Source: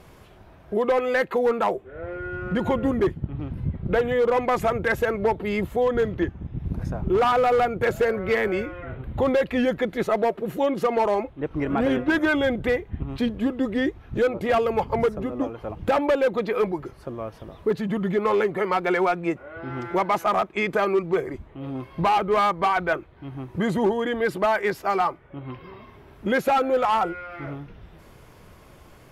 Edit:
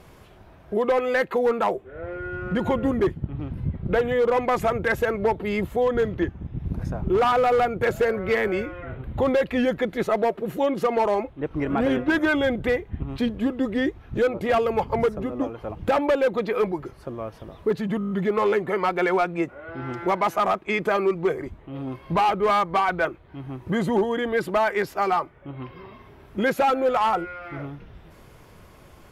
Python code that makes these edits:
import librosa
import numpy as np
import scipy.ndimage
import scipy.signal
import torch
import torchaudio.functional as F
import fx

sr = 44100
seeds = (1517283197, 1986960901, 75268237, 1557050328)

y = fx.edit(x, sr, fx.stutter(start_s=17.99, slice_s=0.02, count=7), tone=tone)